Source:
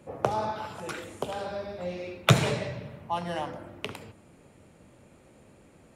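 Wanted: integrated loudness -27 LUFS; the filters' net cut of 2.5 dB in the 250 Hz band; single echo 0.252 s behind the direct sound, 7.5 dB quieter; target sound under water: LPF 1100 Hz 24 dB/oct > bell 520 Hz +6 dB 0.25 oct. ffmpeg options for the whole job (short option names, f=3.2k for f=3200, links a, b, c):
-af "lowpass=f=1.1k:w=0.5412,lowpass=f=1.1k:w=1.3066,equalizer=f=250:t=o:g=-5,equalizer=f=520:t=o:w=0.25:g=6,aecho=1:1:252:0.422,volume=4.5dB"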